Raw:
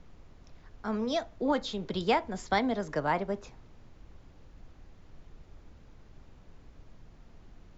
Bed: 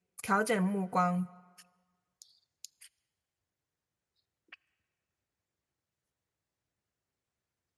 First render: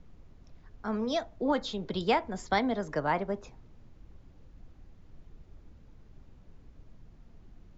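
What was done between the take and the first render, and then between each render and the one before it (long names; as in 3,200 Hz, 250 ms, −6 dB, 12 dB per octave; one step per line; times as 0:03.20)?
broadband denoise 6 dB, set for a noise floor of −55 dBFS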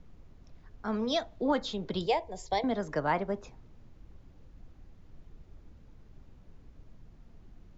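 0:00.88–0:01.47: parametric band 3,700 Hz +5.5 dB
0:02.06–0:02.64: phaser with its sweep stopped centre 580 Hz, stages 4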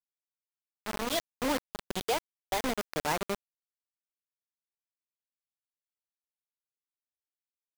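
tuned comb filter 120 Hz, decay 1.1 s, harmonics all, mix 30%
bit reduction 5 bits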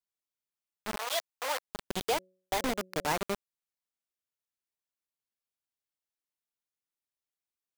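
0:00.96–0:01.64: high-pass filter 580 Hz 24 dB per octave
0:02.14–0:03.07: hum removal 185.5 Hz, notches 3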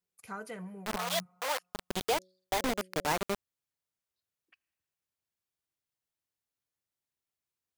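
mix in bed −13 dB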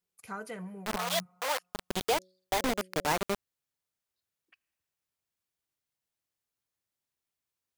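level +1.5 dB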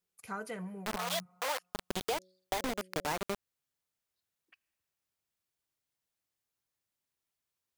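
downward compressor, threshold −30 dBFS, peak gain reduction 6.5 dB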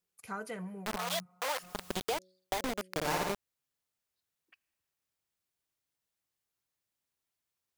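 0:01.56–0:02.00: converter with a step at zero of −47 dBFS
0:02.91–0:03.32: flutter between parallel walls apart 9.6 metres, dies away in 1.2 s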